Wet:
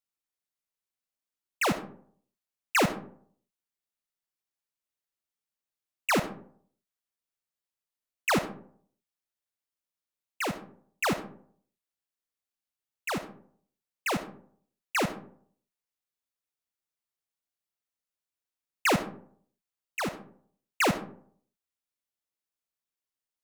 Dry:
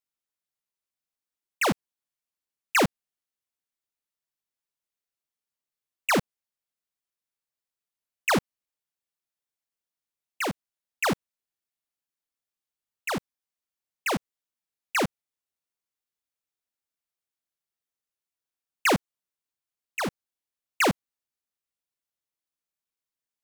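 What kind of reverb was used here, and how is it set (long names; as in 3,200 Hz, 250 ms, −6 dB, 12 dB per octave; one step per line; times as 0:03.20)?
comb and all-pass reverb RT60 0.56 s, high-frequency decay 0.45×, pre-delay 20 ms, DRR 10 dB
level −2.5 dB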